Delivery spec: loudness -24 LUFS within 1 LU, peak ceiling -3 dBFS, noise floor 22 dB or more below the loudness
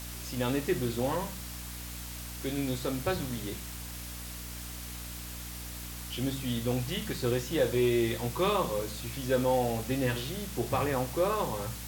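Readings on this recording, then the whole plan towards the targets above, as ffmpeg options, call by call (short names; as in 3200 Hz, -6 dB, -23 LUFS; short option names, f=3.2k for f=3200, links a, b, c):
hum 60 Hz; harmonics up to 300 Hz; hum level -41 dBFS; noise floor -41 dBFS; noise floor target -54 dBFS; loudness -32.0 LUFS; peak -15.5 dBFS; loudness target -24.0 LUFS
-> -af "bandreject=f=60:t=h:w=6,bandreject=f=120:t=h:w=6,bandreject=f=180:t=h:w=6,bandreject=f=240:t=h:w=6,bandreject=f=300:t=h:w=6"
-af "afftdn=nr=13:nf=-41"
-af "volume=8dB"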